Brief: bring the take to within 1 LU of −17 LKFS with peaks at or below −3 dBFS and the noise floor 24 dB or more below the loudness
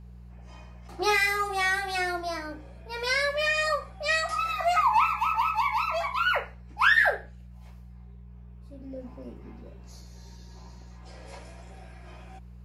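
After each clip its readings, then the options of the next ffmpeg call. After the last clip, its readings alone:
mains hum 60 Hz; hum harmonics up to 180 Hz; level of the hum −44 dBFS; integrated loudness −25.0 LKFS; sample peak −10.5 dBFS; target loudness −17.0 LKFS
→ -af "bandreject=frequency=60:width_type=h:width=4,bandreject=frequency=120:width_type=h:width=4,bandreject=frequency=180:width_type=h:width=4"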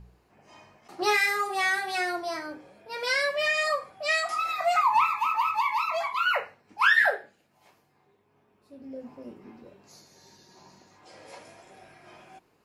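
mains hum none found; integrated loudness −25.0 LKFS; sample peak −10.0 dBFS; target loudness −17.0 LKFS
→ -af "volume=8dB,alimiter=limit=-3dB:level=0:latency=1"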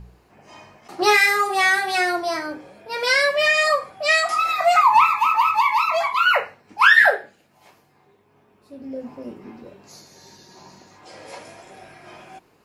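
integrated loudness −17.5 LKFS; sample peak −3.0 dBFS; background noise floor −59 dBFS

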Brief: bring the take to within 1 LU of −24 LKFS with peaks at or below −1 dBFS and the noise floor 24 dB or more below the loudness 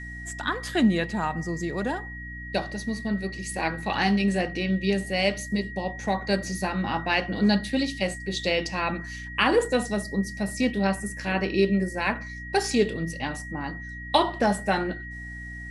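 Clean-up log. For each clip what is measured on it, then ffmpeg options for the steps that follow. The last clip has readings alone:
mains hum 60 Hz; hum harmonics up to 300 Hz; level of the hum −38 dBFS; interfering tone 1,900 Hz; level of the tone −38 dBFS; integrated loudness −26.5 LKFS; sample peak −7.0 dBFS; target loudness −24.0 LKFS
→ -af "bandreject=frequency=60:width_type=h:width=4,bandreject=frequency=120:width_type=h:width=4,bandreject=frequency=180:width_type=h:width=4,bandreject=frequency=240:width_type=h:width=4,bandreject=frequency=300:width_type=h:width=4"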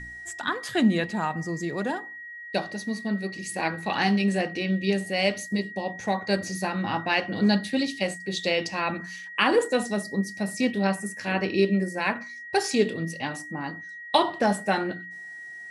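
mains hum none found; interfering tone 1,900 Hz; level of the tone −38 dBFS
→ -af "bandreject=frequency=1900:width=30"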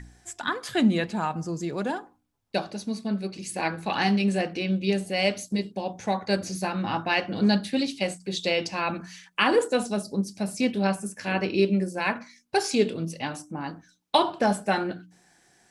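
interfering tone none found; integrated loudness −27.0 LKFS; sample peak −7.5 dBFS; target loudness −24.0 LKFS
→ -af "volume=3dB"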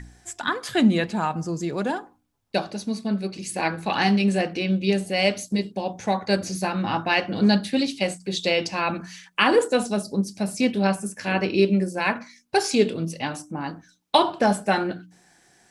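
integrated loudness −24.0 LKFS; sample peak −4.5 dBFS; background noise floor −60 dBFS

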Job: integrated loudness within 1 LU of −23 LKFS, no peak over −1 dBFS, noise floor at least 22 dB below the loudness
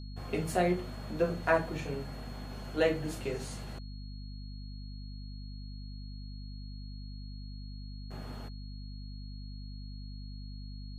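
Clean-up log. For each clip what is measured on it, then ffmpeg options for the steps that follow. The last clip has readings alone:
mains hum 50 Hz; hum harmonics up to 250 Hz; level of the hum −40 dBFS; interfering tone 4,300 Hz; level of the tone −55 dBFS; integrated loudness −37.5 LKFS; sample peak −14.0 dBFS; target loudness −23.0 LKFS
→ -af "bandreject=frequency=50:width_type=h:width=6,bandreject=frequency=100:width_type=h:width=6,bandreject=frequency=150:width_type=h:width=6,bandreject=frequency=200:width_type=h:width=6,bandreject=frequency=250:width_type=h:width=6"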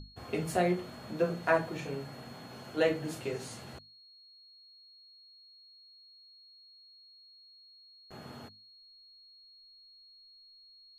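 mains hum none found; interfering tone 4,300 Hz; level of the tone −55 dBFS
→ -af "bandreject=frequency=4300:width=30"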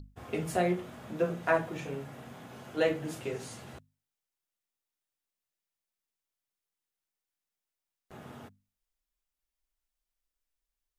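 interfering tone none found; integrated loudness −33.0 LKFS; sample peak −14.0 dBFS; target loudness −23.0 LKFS
→ -af "volume=10dB"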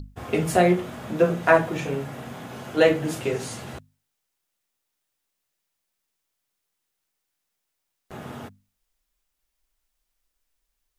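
integrated loudness −23.0 LKFS; sample peak −4.0 dBFS; background noise floor −80 dBFS

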